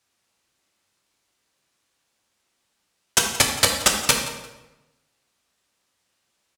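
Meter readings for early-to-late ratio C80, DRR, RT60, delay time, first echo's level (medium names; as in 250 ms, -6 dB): 7.0 dB, 0.5 dB, 1.0 s, 174 ms, -16.5 dB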